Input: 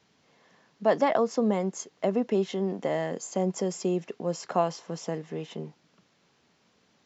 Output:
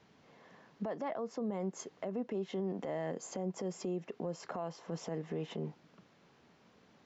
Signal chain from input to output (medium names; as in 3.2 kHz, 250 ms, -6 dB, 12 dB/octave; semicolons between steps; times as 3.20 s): treble shelf 3.2 kHz -11.5 dB; compression 6:1, threshold -35 dBFS, peak gain reduction 16 dB; peak limiter -32.5 dBFS, peak gain reduction 11 dB; trim +3.5 dB